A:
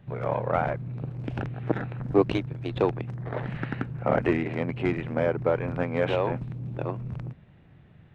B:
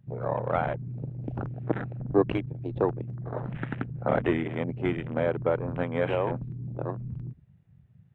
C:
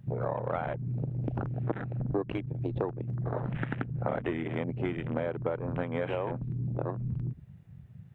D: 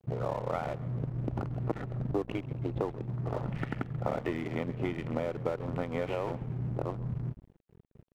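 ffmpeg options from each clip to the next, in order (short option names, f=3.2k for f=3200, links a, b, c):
-af "afwtdn=0.0126,volume=-1.5dB"
-af "acompressor=threshold=-37dB:ratio=5,volume=7.5dB"
-filter_complex "[0:a]asuperstop=centerf=1600:order=4:qfactor=7.3,asplit=7[a][b][c][d][e][f][g];[b]adelay=135,afreqshift=-58,volume=-17dB[h];[c]adelay=270,afreqshift=-116,volume=-21.6dB[i];[d]adelay=405,afreqshift=-174,volume=-26.2dB[j];[e]adelay=540,afreqshift=-232,volume=-30.7dB[k];[f]adelay=675,afreqshift=-290,volume=-35.3dB[l];[g]adelay=810,afreqshift=-348,volume=-39.9dB[m];[a][h][i][j][k][l][m]amix=inputs=7:normalize=0,aeval=exprs='sgn(val(0))*max(abs(val(0))-0.00501,0)':c=same"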